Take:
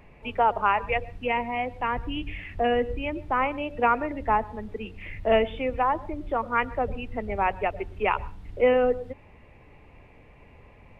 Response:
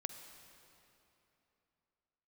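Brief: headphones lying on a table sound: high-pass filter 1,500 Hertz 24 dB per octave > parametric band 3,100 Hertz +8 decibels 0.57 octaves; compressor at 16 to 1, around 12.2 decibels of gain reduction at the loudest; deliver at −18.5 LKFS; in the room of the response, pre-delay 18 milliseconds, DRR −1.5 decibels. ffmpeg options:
-filter_complex "[0:a]acompressor=threshold=-28dB:ratio=16,asplit=2[link_01][link_02];[1:a]atrim=start_sample=2205,adelay=18[link_03];[link_02][link_03]afir=irnorm=-1:irlink=0,volume=3dB[link_04];[link_01][link_04]amix=inputs=2:normalize=0,highpass=frequency=1500:width=0.5412,highpass=frequency=1500:width=1.3066,equalizer=frequency=3100:width_type=o:width=0.57:gain=8,volume=16.5dB"

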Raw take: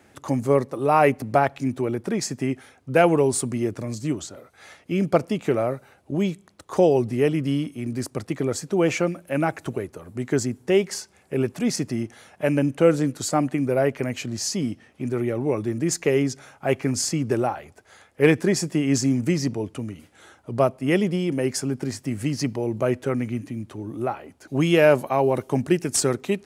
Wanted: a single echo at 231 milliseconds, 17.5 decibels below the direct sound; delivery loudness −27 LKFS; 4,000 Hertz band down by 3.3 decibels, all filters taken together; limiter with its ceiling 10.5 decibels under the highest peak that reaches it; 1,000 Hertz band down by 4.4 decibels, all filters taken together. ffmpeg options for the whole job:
ffmpeg -i in.wav -af "equalizer=frequency=1000:width_type=o:gain=-6.5,equalizer=frequency=4000:width_type=o:gain=-4.5,alimiter=limit=-15.5dB:level=0:latency=1,aecho=1:1:231:0.133" out.wav

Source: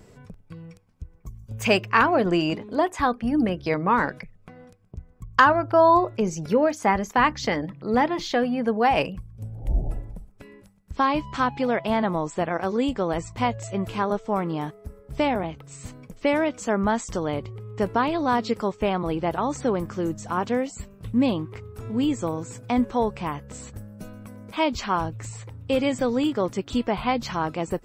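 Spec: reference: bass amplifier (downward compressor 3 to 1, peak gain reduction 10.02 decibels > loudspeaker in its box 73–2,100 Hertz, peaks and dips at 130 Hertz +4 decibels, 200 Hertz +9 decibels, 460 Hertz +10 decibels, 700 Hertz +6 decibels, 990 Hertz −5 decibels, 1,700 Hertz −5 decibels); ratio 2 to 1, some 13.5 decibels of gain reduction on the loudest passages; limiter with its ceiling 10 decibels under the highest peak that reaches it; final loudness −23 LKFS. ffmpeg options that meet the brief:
ffmpeg -i in.wav -af "acompressor=threshold=-38dB:ratio=2,alimiter=limit=-23.5dB:level=0:latency=1,acompressor=threshold=-41dB:ratio=3,highpass=frequency=73:width=0.5412,highpass=frequency=73:width=1.3066,equalizer=frequency=130:width_type=q:width=4:gain=4,equalizer=frequency=200:width_type=q:width=4:gain=9,equalizer=frequency=460:width_type=q:width=4:gain=10,equalizer=frequency=700:width_type=q:width=4:gain=6,equalizer=frequency=990:width_type=q:width=4:gain=-5,equalizer=frequency=1700:width_type=q:width=4:gain=-5,lowpass=frequency=2100:width=0.5412,lowpass=frequency=2100:width=1.3066,volume=16.5dB" out.wav

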